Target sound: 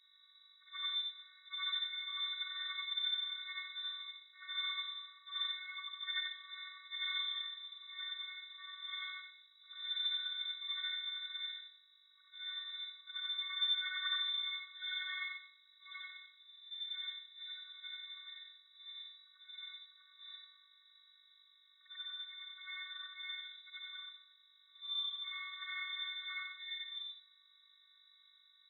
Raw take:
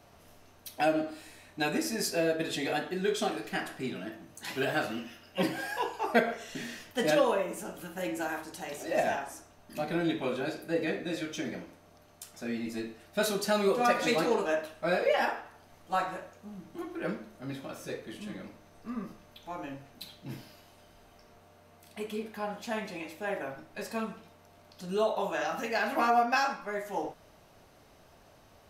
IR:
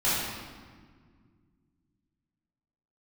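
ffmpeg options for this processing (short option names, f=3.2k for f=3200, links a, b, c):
-af "afftfilt=real='re':imag='-im':win_size=8192:overlap=0.75,afftfilt=real='hypot(re,im)*cos(PI*b)':imag='0':win_size=512:overlap=0.75,aeval=exprs='val(0)+0.000282*(sin(2*PI*50*n/s)+sin(2*PI*2*50*n/s)/2+sin(2*PI*3*50*n/s)/3+sin(2*PI*4*50*n/s)/4+sin(2*PI*5*50*n/s)/5)':c=same,lowpass=f=3.3k:t=q:w=0.5098,lowpass=f=3.3k:t=q:w=0.6013,lowpass=f=3.3k:t=q:w=0.9,lowpass=f=3.3k:t=q:w=2.563,afreqshift=-3900,afftfilt=real='re*eq(mod(floor(b*sr/1024/1100),2),1)':imag='im*eq(mod(floor(b*sr/1024/1100),2),1)':win_size=1024:overlap=0.75,volume=1dB"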